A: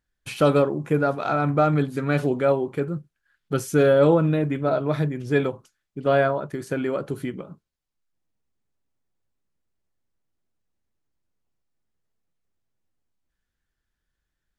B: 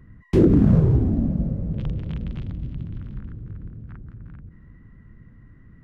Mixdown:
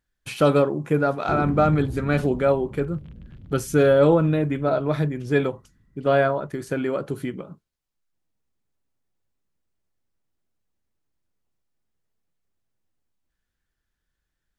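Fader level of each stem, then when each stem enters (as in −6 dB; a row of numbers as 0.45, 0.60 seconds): +0.5, −13.5 decibels; 0.00, 0.95 seconds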